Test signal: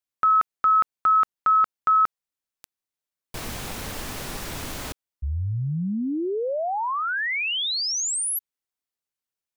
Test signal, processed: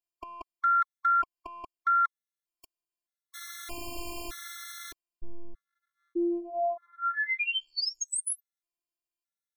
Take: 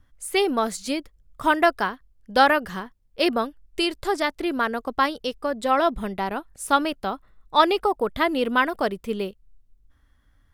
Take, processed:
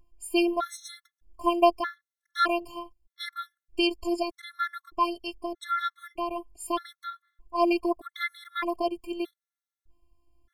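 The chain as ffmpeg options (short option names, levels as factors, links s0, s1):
-af "afftfilt=real='hypot(re,im)*cos(PI*b)':imag='0':win_size=512:overlap=0.75,aeval=exprs='0.708*(cos(1*acos(clip(val(0)/0.708,-1,1)))-cos(1*PI/2))+0.02*(cos(2*acos(clip(val(0)/0.708,-1,1)))-cos(2*PI/2))':c=same,afftfilt=real='re*gt(sin(2*PI*0.81*pts/sr)*(1-2*mod(floor(b*sr/1024/1100),2)),0)':imag='im*gt(sin(2*PI*0.81*pts/sr)*(1-2*mod(floor(b*sr/1024/1100),2)),0)':win_size=1024:overlap=0.75"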